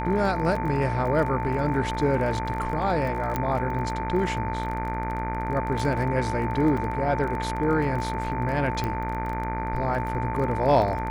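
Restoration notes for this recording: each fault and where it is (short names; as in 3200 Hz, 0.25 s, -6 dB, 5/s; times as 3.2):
buzz 60 Hz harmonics 40 -31 dBFS
crackle 23/s -31 dBFS
tone 890 Hz -30 dBFS
3.36 pop -12 dBFS
6.77 gap 4.4 ms
8.84 pop -16 dBFS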